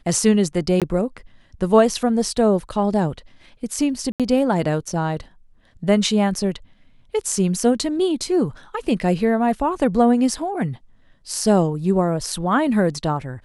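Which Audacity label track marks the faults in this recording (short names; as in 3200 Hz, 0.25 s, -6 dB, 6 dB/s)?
0.800000	0.820000	gap 17 ms
4.120000	4.200000	gap 77 ms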